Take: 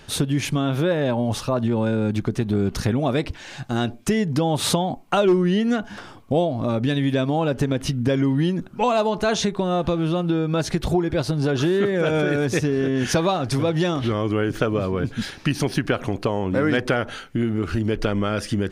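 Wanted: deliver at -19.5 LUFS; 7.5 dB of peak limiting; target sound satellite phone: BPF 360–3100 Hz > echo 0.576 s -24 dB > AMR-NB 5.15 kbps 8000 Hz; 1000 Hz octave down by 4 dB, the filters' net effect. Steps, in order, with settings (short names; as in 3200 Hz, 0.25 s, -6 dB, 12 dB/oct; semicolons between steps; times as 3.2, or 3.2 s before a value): bell 1000 Hz -5.5 dB; limiter -15 dBFS; BPF 360–3100 Hz; echo 0.576 s -24 dB; gain +10.5 dB; AMR-NB 5.15 kbps 8000 Hz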